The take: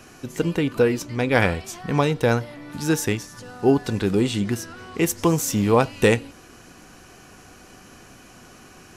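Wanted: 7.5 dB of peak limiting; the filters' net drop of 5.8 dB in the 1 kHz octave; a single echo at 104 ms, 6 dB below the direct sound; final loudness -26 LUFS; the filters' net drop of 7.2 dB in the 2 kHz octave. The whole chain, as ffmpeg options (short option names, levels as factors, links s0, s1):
-af "equalizer=f=1000:t=o:g=-6,equalizer=f=2000:t=o:g=-7.5,alimiter=limit=0.2:level=0:latency=1,aecho=1:1:104:0.501,volume=0.841"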